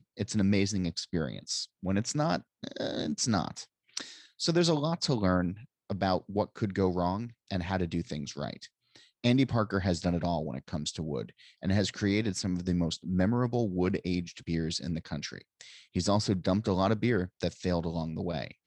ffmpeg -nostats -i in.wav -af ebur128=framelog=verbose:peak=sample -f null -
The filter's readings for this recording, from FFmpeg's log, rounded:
Integrated loudness:
  I:         -31.0 LUFS
  Threshold: -41.2 LUFS
Loudness range:
  LRA:         2.5 LU
  Threshold: -51.3 LUFS
  LRA low:   -32.7 LUFS
  LRA high:  -30.2 LUFS
Sample peak:
  Peak:      -10.6 dBFS